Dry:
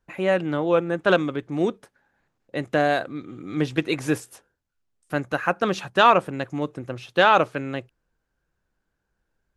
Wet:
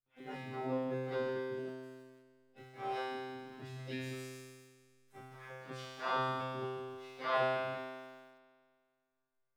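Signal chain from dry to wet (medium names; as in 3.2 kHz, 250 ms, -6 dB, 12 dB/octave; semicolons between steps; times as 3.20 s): slow attack 121 ms; harmony voices -5 st -3 dB, -4 st -1 dB, +5 st -3 dB; feedback comb 130 Hz, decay 1.9 s, mix 100%; in parallel at -10 dB: small samples zeroed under -53 dBFS; on the sum: trim -2 dB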